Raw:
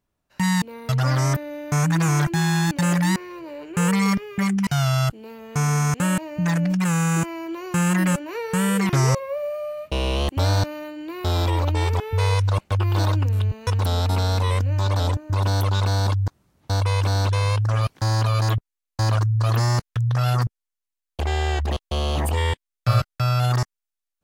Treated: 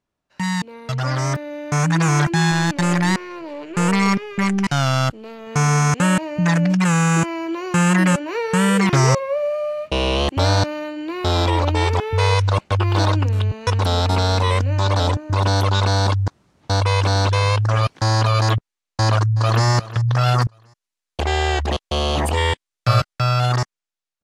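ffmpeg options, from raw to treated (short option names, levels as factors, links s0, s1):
-filter_complex "[0:a]asettb=1/sr,asplit=3[s0][s1][s2];[s0]atrim=end=2.514[s3];[s1]atrim=start=2.51:end=5.47,asetpts=PTS-STARTPTS,afade=t=in:d=0.004:c=qsin,afade=t=out:st=2.956:d=0.004:c=qsin,aeval=exprs='if(lt(val(0),0),0.447*val(0),val(0))':c=same[s4];[s2]atrim=start=5.466[s5];[s3][s4]acrossfade=d=0.004:c1=hsin:c2=qsin[s6];[s6][s5]acrossfade=d=0.004:c1=qsin:c2=hsin,asplit=2[s7][s8];[s8]afade=t=in:st=19:d=0.01,afade=t=out:st=19.65:d=0.01,aecho=0:1:360|720|1080:0.149624|0.0523682|0.0183289[s9];[s7][s9]amix=inputs=2:normalize=0,asettb=1/sr,asplit=3[s10][s11][s12];[s10]atrim=end=20.364[s13];[s11]atrim=start=20.36:end=23.13,asetpts=PTS-STARTPTS,afade=t=in:d=0.004:c=qsin,afade=t=out:st=2.766:d=0.004:c=qsin,highshelf=f=8600:g=6[s14];[s12]atrim=start=23.126[s15];[s13][s14]acrossfade=d=0.004:c1=hsin:c2=qsin[s16];[s16][s15]acrossfade=d=0.004:c1=qsin:c2=hsin,lowpass=7300,lowshelf=f=110:g=-8.5,dynaudnorm=f=200:g=17:m=2.24"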